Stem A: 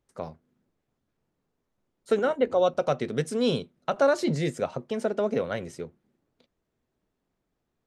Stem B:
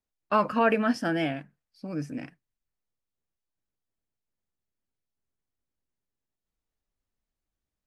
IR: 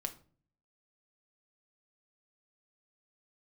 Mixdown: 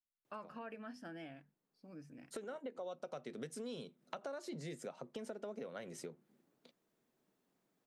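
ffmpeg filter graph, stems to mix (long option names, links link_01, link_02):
-filter_complex "[0:a]highpass=frequency=150:width=0.5412,highpass=frequency=150:width=1.3066,highshelf=frequency=8300:gain=7,acompressor=threshold=-36dB:ratio=2,adelay=250,volume=-0.5dB[link_01];[1:a]bandreject=frequency=50:width_type=h:width=6,bandreject=frequency=100:width_type=h:width=6,bandreject=frequency=150:width_type=h:width=6,bandreject=frequency=200:width_type=h:width=6,bandreject=frequency=250:width_type=h:width=6,volume=-19dB,asplit=2[link_02][link_03];[link_03]apad=whole_len=358063[link_04];[link_01][link_04]sidechaincompress=threshold=-52dB:ratio=10:attack=11:release=1440[link_05];[link_05][link_02]amix=inputs=2:normalize=0,acompressor=threshold=-46dB:ratio=3"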